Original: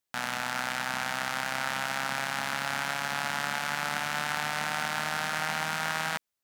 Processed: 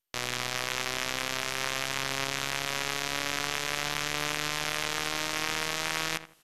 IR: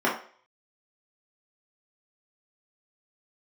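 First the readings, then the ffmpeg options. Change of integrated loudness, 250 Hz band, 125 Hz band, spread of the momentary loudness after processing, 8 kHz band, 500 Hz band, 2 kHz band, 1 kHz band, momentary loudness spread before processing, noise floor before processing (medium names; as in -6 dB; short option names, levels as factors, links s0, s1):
+0.5 dB, +0.5 dB, +0.5 dB, 1 LU, +4.5 dB, +2.0 dB, -1.5 dB, -4.0 dB, 1 LU, -85 dBFS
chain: -filter_complex "[0:a]equalizer=f=3000:w=3.4:g=7,areverse,acompressor=mode=upward:threshold=0.0158:ratio=2.5,areverse,aeval=exprs='0.282*(cos(1*acos(clip(val(0)/0.282,-1,1)))-cos(1*PI/2))+0.0631*(cos(7*acos(clip(val(0)/0.282,-1,1)))-cos(7*PI/2))':c=same,asplit=2[s0][s1];[s1]adelay=81,lowpass=f=1800:p=1,volume=0.266,asplit=2[s2][s3];[s3]adelay=81,lowpass=f=1800:p=1,volume=0.29,asplit=2[s4][s5];[s5]adelay=81,lowpass=f=1800:p=1,volume=0.29[s6];[s0][s2][s4][s6]amix=inputs=4:normalize=0" -ar 48000 -c:a mp2 -b:a 128k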